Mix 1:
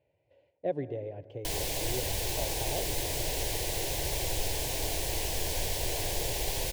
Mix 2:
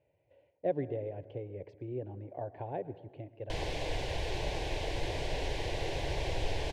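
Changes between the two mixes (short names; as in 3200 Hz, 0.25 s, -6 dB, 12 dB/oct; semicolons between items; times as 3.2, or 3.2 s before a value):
background: entry +2.05 s; master: add LPF 3000 Hz 12 dB/oct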